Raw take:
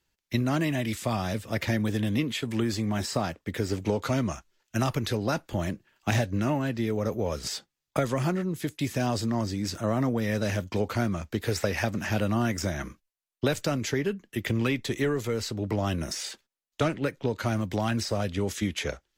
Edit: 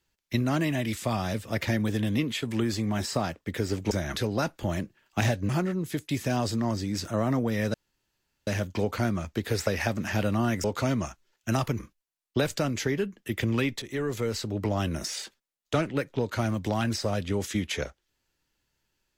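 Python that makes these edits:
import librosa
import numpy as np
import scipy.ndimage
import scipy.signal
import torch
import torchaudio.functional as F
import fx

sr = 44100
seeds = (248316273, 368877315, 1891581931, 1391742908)

y = fx.edit(x, sr, fx.swap(start_s=3.91, length_s=1.15, other_s=12.61, other_length_s=0.25),
    fx.cut(start_s=6.39, length_s=1.8),
    fx.insert_room_tone(at_s=10.44, length_s=0.73),
    fx.fade_in_from(start_s=14.89, length_s=0.33, floor_db=-13.5), tone=tone)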